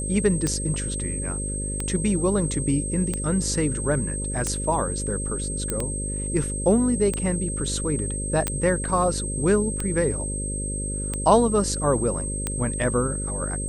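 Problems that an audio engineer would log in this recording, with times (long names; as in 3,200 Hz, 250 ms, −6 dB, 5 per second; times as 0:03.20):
mains buzz 50 Hz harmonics 11 −30 dBFS
scratch tick 45 rpm −12 dBFS
whistle 8,300 Hz −30 dBFS
0:05.70: click −11 dBFS
0:08.48: click −10 dBFS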